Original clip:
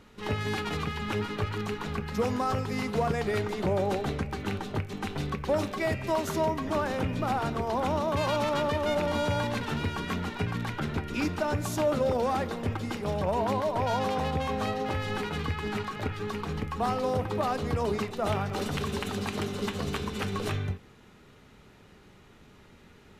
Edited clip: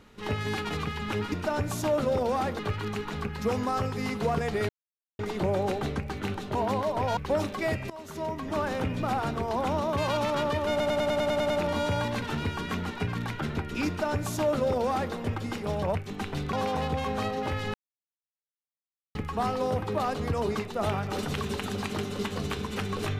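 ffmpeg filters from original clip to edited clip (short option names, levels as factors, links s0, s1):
-filter_complex "[0:a]asplit=19[s0][s1][s2][s3][s4][s5][s6][s7][s8][s9][s10][s11][s12][s13][s14][s15][s16][s17][s18];[s0]atrim=end=1.322[s19];[s1]atrim=start=11.258:end=12.532[s20];[s2]atrim=start=1.318:end=3.42,asetpts=PTS-STARTPTS,afade=t=out:st=2.098:d=0.004:c=hsin,apad=pad_dur=0.5[s21];[s3]atrim=start=3.42:end=4.782,asetpts=PTS-STARTPTS,afade=t=in:d=0.004:c=hsin[s22];[s4]atrim=start=13.338:end=13.962[s23];[s5]atrim=start=5.358:end=6.09,asetpts=PTS-STARTPTS,afade=t=out:st=0.728:d=0.004:c=hsin:silence=0.0944061[s24];[s6]atrim=start=6.09:end=8.992,asetpts=PTS-STARTPTS,afade=t=in:d=0.76:silence=0.0944061[s25];[s7]atrim=start=8.888:end=8.992[s26];[s8]atrim=start=8.888:end=8.992[s27];[s9]atrim=start=8.888:end=8.992[s28];[s10]atrim=start=8.888:end=8.992[s29];[s11]atrim=start=8.888:end=8.992[s30];[s12]atrim=start=8.888:end=8.992[s31];[s13]atrim=start=8.888:end=8.992[s32];[s14]atrim=start=8.888:end=13.342[s33];[s15]atrim=start=4.778:end=5.362[s34];[s16]atrim=start=13.958:end=15.17,asetpts=PTS-STARTPTS,afade=t=out:st=1.208:d=0.004:c=hsin[s35];[s17]atrim=start=15.17:end=16.58,asetpts=PTS-STARTPTS,volume=0[s36];[s18]atrim=start=16.58,asetpts=PTS-STARTPTS,afade=t=in:d=0.004:c=hsin[s37];[s19][s20]acrossfade=d=0.004:c1=hsin:c2=hsin[s38];[s21][s22]concat=n=2:v=0:a=1[s39];[s38][s39]acrossfade=d=0.004:c1=hsin:c2=hsin[s40];[s40][s23]acrossfade=d=0.004:c1=hsin:c2=hsin[s41];[s24][s25]concat=n=2:v=0:a=1[s42];[s41][s42]acrossfade=d=0.004:c1=hsin:c2=hsin[s43];[s43][s26]acrossfade=d=0.004:c1=hsin:c2=hsin[s44];[s44][s27]acrossfade=d=0.004:c1=hsin:c2=hsin[s45];[s45][s28]acrossfade=d=0.004:c1=hsin:c2=hsin[s46];[s46][s29]acrossfade=d=0.004:c1=hsin:c2=hsin[s47];[s47][s30]acrossfade=d=0.004:c1=hsin:c2=hsin[s48];[s48][s31]acrossfade=d=0.004:c1=hsin:c2=hsin[s49];[s49][s32]acrossfade=d=0.004:c1=hsin:c2=hsin[s50];[s50][s33]acrossfade=d=0.004:c1=hsin:c2=hsin[s51];[s51][s34]acrossfade=d=0.004:c1=hsin:c2=hsin[s52];[s35][s36][s37]concat=n=3:v=0:a=1[s53];[s52][s53]acrossfade=d=0.004:c1=hsin:c2=hsin"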